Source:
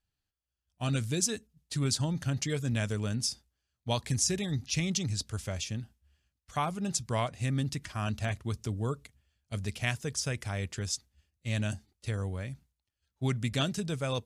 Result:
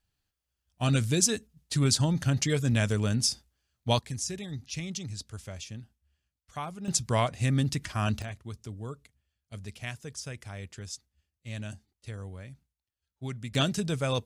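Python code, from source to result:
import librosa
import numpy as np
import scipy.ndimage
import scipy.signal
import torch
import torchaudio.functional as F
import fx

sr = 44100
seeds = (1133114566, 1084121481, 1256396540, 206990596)

y = fx.gain(x, sr, db=fx.steps((0.0, 5.0), (3.99, -5.5), (6.88, 4.5), (8.22, -6.5), (13.55, 3.5)))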